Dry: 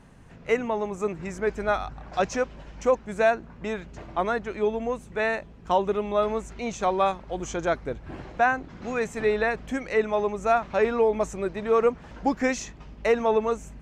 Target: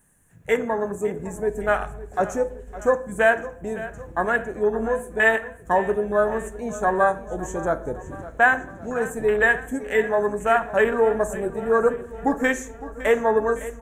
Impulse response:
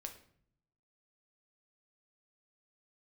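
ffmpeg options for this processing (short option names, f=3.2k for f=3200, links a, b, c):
-filter_complex "[0:a]afwtdn=0.0355,equalizer=f=1.7k:t=o:w=0.22:g=12,aecho=1:1:559|1118|1677|2236|2795:0.158|0.084|0.0445|0.0236|0.0125,aexciter=amount=15.5:drive=8:freq=7.5k,asettb=1/sr,asplit=3[a][b][c];[a]atrim=end=4.774[d];[b]atrim=start=4.77:end=5.36,asetpts=PTS-STARTPTS,afade=t=in:d=0.004:c=qsin,afade=t=out:st=0.586:d=0.004:c=qsin,asplit=2[e][f];[f]adelay=18,volume=-5.5dB[g];[e][g]amix=inputs=2:normalize=0,atrim=end_sample=26019[h];[c]atrim=start=5.356[i];[d][h]acrossfade=d=0.004:c1=hsin:c2=qsin[j];[j][i]acrossfade=d=0.004:c1=qsin:c2=hsin,asplit=2[k][l];[1:a]atrim=start_sample=2205[m];[l][m]afir=irnorm=-1:irlink=0,volume=5dB[n];[k][n]amix=inputs=2:normalize=0,volume=-4dB"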